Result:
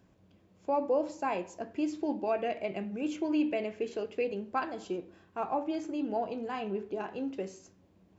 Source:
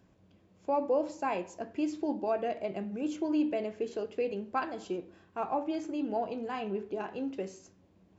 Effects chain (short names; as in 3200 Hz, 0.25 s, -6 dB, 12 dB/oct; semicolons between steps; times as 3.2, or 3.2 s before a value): 1.95–4.24 dynamic EQ 2400 Hz, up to +7 dB, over -59 dBFS, Q 2.2